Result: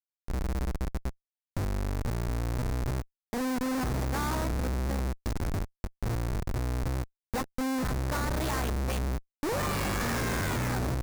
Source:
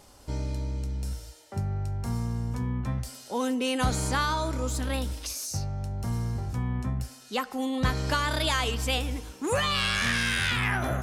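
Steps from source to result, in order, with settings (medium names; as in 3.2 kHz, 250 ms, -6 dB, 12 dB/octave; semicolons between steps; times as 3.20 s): Schmitt trigger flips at -27 dBFS; peaking EQ 3.1 kHz -6.5 dB 0.66 oct; endings held to a fixed fall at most 480 dB/s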